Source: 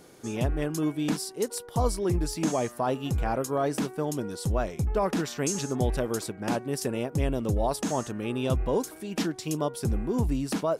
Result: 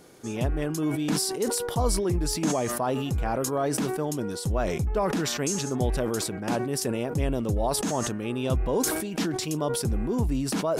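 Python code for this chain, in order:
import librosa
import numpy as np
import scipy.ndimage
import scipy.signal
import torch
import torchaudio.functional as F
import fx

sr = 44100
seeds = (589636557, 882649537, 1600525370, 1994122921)

y = fx.sustainer(x, sr, db_per_s=31.0)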